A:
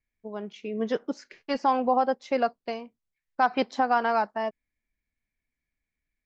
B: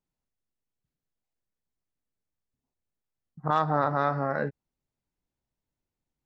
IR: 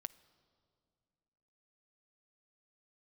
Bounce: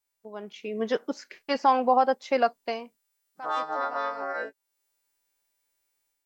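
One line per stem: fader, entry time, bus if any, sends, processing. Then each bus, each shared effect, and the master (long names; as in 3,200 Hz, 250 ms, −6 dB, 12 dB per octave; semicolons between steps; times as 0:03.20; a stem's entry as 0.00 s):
−2.5 dB, 0.00 s, no send, noise gate −52 dBFS, range −6 dB; automatic ducking −21 dB, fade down 0.45 s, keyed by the second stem
+0.5 dB, 0.00 s, no send, every partial snapped to a pitch grid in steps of 2 semitones; high-pass filter 310 Hz 24 dB per octave; downward compressor 1.5 to 1, threshold −50 dBFS, peak gain reduction 10.5 dB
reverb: not used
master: low-shelf EQ 250 Hz −10.5 dB; automatic gain control gain up to 6 dB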